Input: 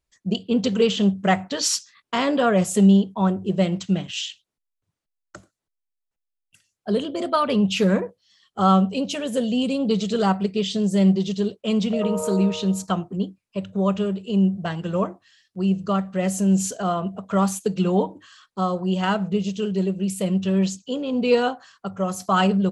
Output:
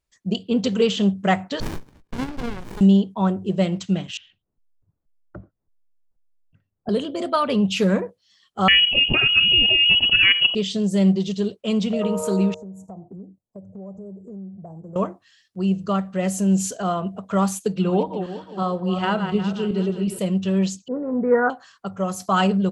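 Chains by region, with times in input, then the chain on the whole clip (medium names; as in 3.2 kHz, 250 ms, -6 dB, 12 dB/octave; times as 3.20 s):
1.60–2.81 s: high-pass 660 Hz + upward compressor, threshold -35 dBFS + sliding maximum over 65 samples
4.17–6.89 s: low-pass 1.3 kHz + tilt EQ -3.5 dB/octave
8.68–10.55 s: transient shaper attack +7 dB, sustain -10 dB + frequency inversion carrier 3.1 kHz + level flattener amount 70%
12.54–14.96 s: Chebyshev band-stop 750–6700 Hz, order 3 + resonant high shelf 2.6 kHz -10.5 dB, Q 3 + compression 4:1, threshold -37 dBFS
17.72–20.19 s: backward echo that repeats 181 ms, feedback 53%, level -7.5 dB + peaking EQ 6.7 kHz -11.5 dB 0.53 oct
20.88–21.50 s: steep low-pass 2 kHz 96 dB/octave + dynamic bell 1.5 kHz, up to +7 dB, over -40 dBFS, Q 1.4
whole clip: none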